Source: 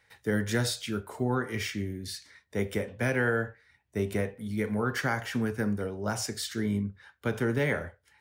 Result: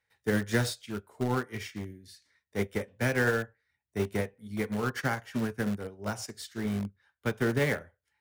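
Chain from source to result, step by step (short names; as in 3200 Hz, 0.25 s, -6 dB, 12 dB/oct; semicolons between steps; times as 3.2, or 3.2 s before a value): in parallel at -12 dB: wrapped overs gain 24.5 dB; on the sum: upward expander 2.5:1, over -37 dBFS; gain +2.5 dB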